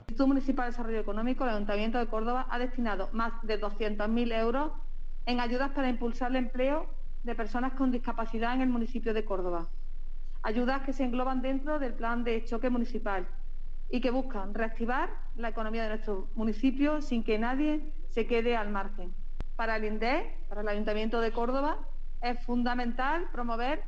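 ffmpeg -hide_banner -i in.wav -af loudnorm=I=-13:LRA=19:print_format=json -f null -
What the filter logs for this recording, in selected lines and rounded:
"input_i" : "-32.3",
"input_tp" : "-15.6",
"input_lra" : "1.7",
"input_thresh" : "-42.6",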